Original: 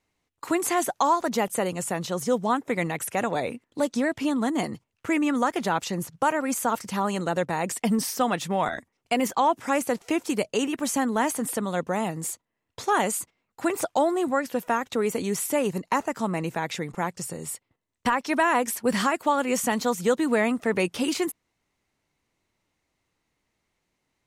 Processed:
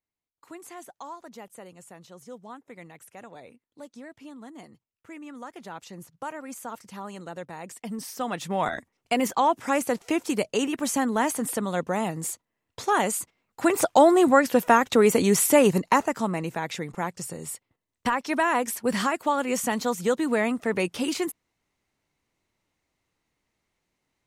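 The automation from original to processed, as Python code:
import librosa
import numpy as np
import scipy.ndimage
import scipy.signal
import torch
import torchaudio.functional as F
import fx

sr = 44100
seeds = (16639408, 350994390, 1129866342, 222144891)

y = fx.gain(x, sr, db=fx.line((5.16, -18.5), (6.09, -12.0), (7.84, -12.0), (8.67, 0.0), (13.19, 0.0), (14.11, 7.0), (15.7, 7.0), (16.42, -1.5)))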